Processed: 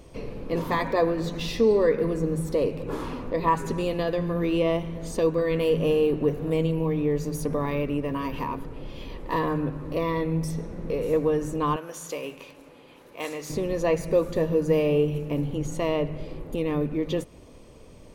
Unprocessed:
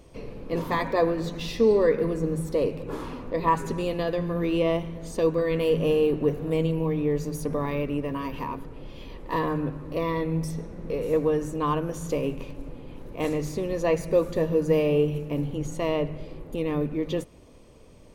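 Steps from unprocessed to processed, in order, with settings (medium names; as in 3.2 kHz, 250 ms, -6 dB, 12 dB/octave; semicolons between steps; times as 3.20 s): 11.76–13.50 s: high-pass 1.2 kHz 6 dB/octave; in parallel at -3 dB: compression, threshold -31 dBFS, peak gain reduction 14.5 dB; on the sum: trim -1.5 dB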